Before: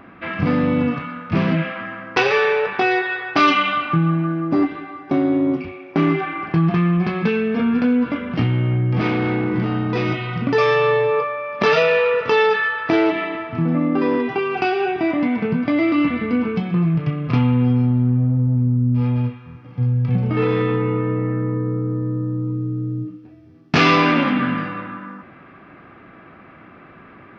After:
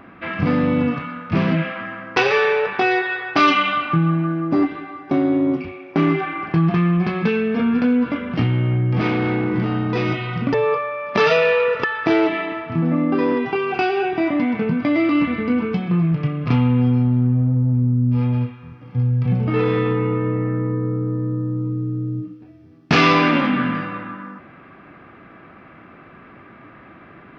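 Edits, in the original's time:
10.54–11 cut
12.3–12.67 cut

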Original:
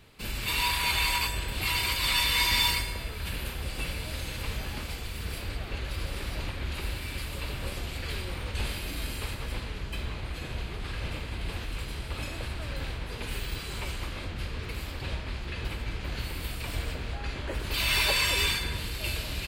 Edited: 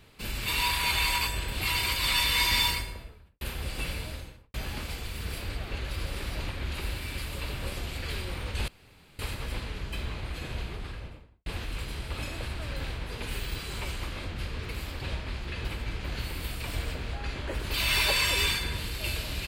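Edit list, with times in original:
2.57–3.41 studio fade out
3.94–4.54 studio fade out
8.68–9.19 room tone
10.59–11.46 studio fade out

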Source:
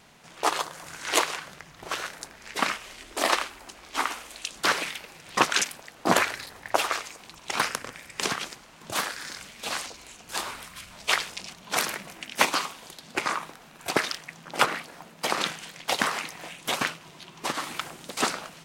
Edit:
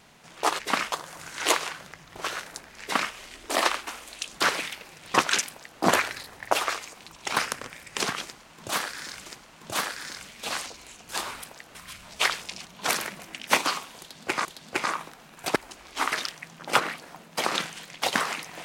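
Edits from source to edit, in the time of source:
2.48–2.81 copy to 0.59
3.54–4.1 move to 13.98
5.71–6.03 copy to 10.63
8.46–9.49 loop, 2 plays
12.87–13.33 loop, 2 plays

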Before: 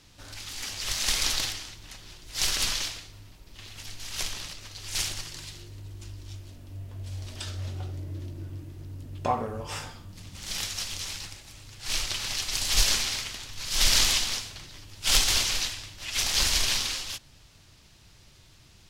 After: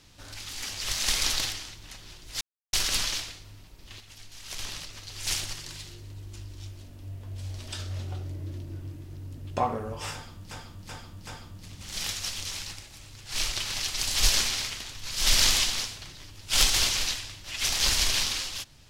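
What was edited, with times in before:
2.41 insert silence 0.32 s
3.68–4.27 gain -7 dB
9.81–10.19 loop, 4 plays

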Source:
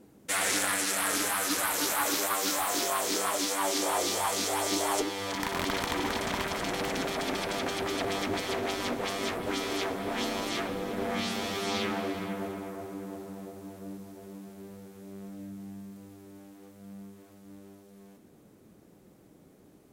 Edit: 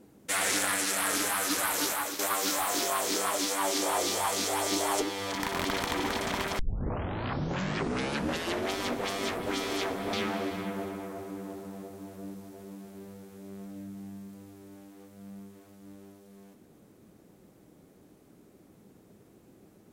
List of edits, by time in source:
1.84–2.19 fade out, to -11 dB
6.59 tape start 2.15 s
10.13–11.76 cut

